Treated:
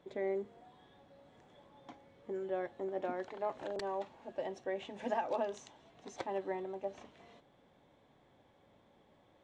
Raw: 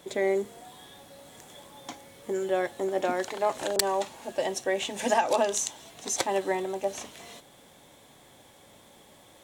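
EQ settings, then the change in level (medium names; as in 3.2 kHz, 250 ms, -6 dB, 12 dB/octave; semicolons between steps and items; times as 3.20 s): tape spacing loss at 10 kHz 30 dB; -8.5 dB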